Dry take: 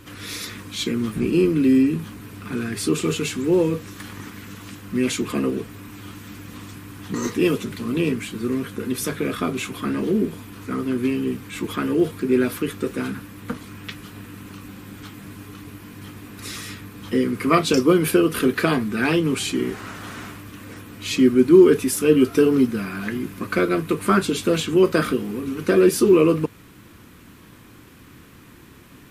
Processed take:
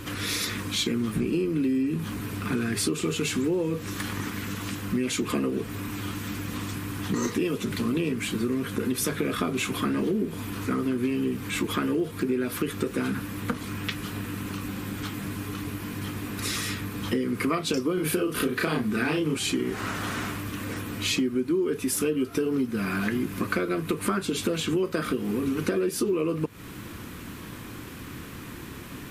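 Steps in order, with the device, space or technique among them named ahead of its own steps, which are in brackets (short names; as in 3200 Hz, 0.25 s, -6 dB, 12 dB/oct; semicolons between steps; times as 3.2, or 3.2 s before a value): 17.94–19.37 doubler 33 ms -2 dB; serial compression, peaks first (compressor 6:1, threshold -25 dBFS, peak gain reduction 16.5 dB; compressor 1.5:1, threshold -39 dBFS, peak gain reduction 6.5 dB); gain +7 dB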